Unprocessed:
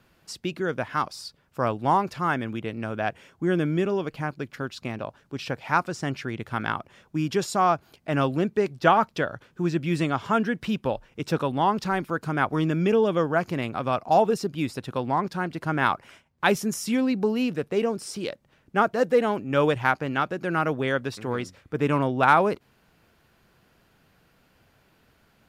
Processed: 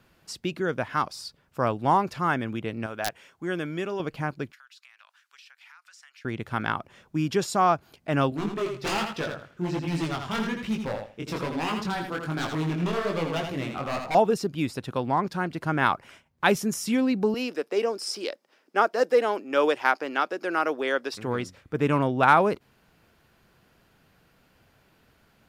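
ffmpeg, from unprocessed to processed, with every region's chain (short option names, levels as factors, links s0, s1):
-filter_complex "[0:a]asettb=1/sr,asplit=3[s0][s1][s2];[s0]atrim=end=2.864[s3];[s1]atrim=start=2.86:end=4,asetpts=PTS-STARTPTS,afade=t=in:d=0.004:c=qsin,afade=t=out:st=1.136:d=0.004:c=qsin,lowshelf=f=430:g=-11,aeval=exprs='(mod(5.62*val(0)+1,2)-1)/5.62':c=same[s4];[s2]atrim=start=3.996[s5];[s3][s4]acrossfade=d=0.004:c1=hsin:c2=qsin[s6];[s6][s5]acrossfade=d=0.004:c1=qsin:c2=hsin,asettb=1/sr,asplit=3[s7][s8][s9];[s7]atrim=end=4.524[s10];[s8]atrim=start=4.52:end=6.25,asetpts=PTS-STARTPTS,afade=t=in:d=0.004:c=qsin,afade=t=out:st=1.726:d=0.004:c=qsin,highpass=f=1400:w=0.5412,highpass=f=1400:w=1.3066,acompressor=threshold=0.00355:ratio=8:attack=3.2:release=140:knee=1:detection=peak[s11];[s9]atrim=start=6.246[s12];[s10][s11]acrossfade=d=0.004:c1=hsin:c2=qsin[s13];[s13][s12]acrossfade=d=0.004:c1=qsin:c2=hsin,asettb=1/sr,asplit=3[s14][s15][s16];[s14]atrim=end=8.304[s17];[s15]atrim=start=8.3:end=14.15,asetpts=PTS-STARTPTS,afade=t=in:d=0.004:c=qsin,afade=t=out:st=5.846:d=0.004:c=qsin,aeval=exprs='0.1*(abs(mod(val(0)/0.1+3,4)-2)-1)':c=same,flanger=delay=18:depth=5:speed=1.2,aecho=1:1:82|164|246:0.501|0.105|0.0221,atrim=end_sample=257985[s18];[s16]atrim=start=14.146[s19];[s17][s18]acrossfade=d=0.004:c1=hsin:c2=qsin[s20];[s20][s19]acrossfade=d=0.004:c1=qsin:c2=hsin,asettb=1/sr,asplit=3[s21][s22][s23];[s21]atrim=end=17.344[s24];[s22]atrim=start=17.34:end=21.14,asetpts=PTS-STARTPTS,afade=t=in:d=0.004:c=qsin,afade=t=out:st=3.796:d=0.004:c=qsin,deesser=0.35,highpass=f=300:w=0.5412,highpass=f=300:w=1.3066,equalizer=f=5100:t=o:w=0.23:g=10.5[s25];[s23]atrim=start=21.136[s26];[s24][s25]acrossfade=d=0.004:c1=hsin:c2=qsin[s27];[s27][s26]acrossfade=d=0.004:c1=qsin:c2=hsin"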